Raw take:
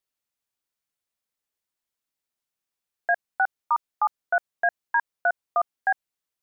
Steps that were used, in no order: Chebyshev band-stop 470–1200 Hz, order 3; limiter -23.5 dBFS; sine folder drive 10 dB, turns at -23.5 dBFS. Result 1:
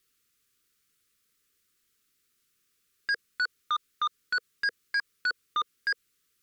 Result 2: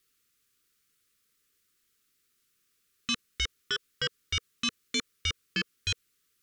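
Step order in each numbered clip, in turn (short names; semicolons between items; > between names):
limiter > Chebyshev band-stop > sine folder; limiter > sine folder > Chebyshev band-stop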